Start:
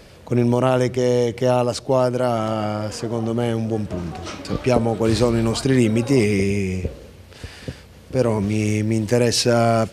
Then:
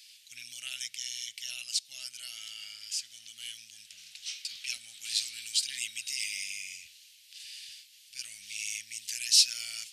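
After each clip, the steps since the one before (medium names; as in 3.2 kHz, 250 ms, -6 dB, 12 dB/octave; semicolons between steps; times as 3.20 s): inverse Chebyshev high-pass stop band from 1.1 kHz, stop band 50 dB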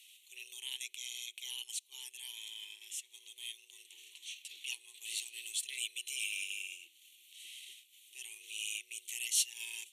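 static phaser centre 1.3 kHz, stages 6; frequency shift +260 Hz; transient shaper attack -4 dB, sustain -8 dB; trim +1.5 dB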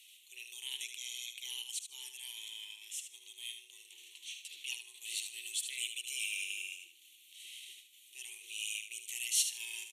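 feedback delay 75 ms, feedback 26%, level -8 dB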